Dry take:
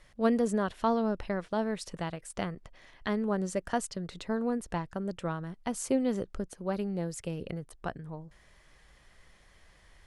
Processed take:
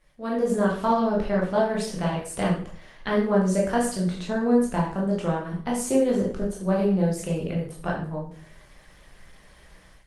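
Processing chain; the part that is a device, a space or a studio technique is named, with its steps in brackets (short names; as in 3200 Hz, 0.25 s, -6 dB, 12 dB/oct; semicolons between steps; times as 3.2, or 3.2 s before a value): 6.58–7.98 high shelf 7400 Hz -3 dB; speakerphone in a meeting room (reverb RT60 0.50 s, pre-delay 12 ms, DRR -4 dB; AGC gain up to 11.5 dB; gain -7 dB; Opus 24 kbps 48000 Hz)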